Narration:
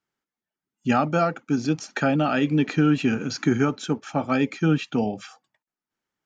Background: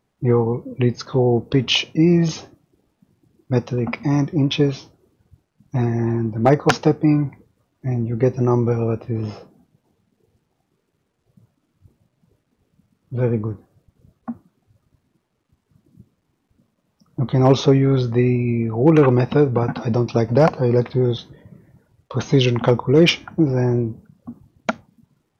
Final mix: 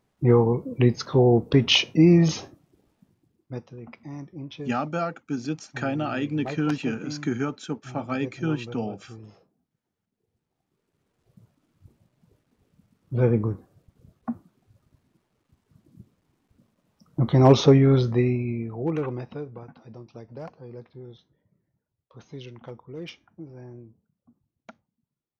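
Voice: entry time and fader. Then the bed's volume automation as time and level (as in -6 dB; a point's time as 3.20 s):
3.80 s, -6.0 dB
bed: 2.98 s -1 dB
3.69 s -19.5 dB
9.94 s -19.5 dB
11.20 s -1 dB
17.92 s -1 dB
19.78 s -24.5 dB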